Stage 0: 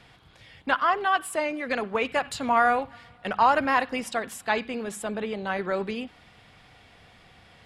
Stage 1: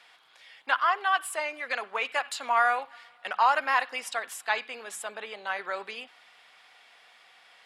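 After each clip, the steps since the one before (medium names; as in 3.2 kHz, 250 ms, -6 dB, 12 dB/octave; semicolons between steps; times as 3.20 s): high-pass 840 Hz 12 dB/octave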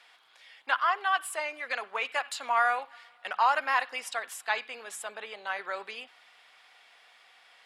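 bass shelf 200 Hz -8 dB; trim -1.5 dB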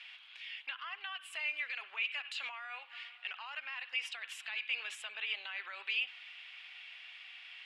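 compression 6:1, threshold -36 dBFS, peak gain reduction 16 dB; peak limiter -34 dBFS, peak gain reduction 10.5 dB; band-pass filter 2.7 kHz, Q 4; trim +13.5 dB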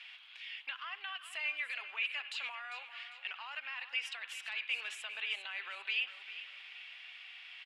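feedback delay 399 ms, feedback 37%, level -13 dB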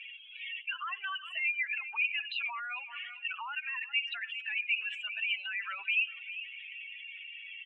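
spectral contrast enhancement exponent 3; distance through air 98 m; trim +7.5 dB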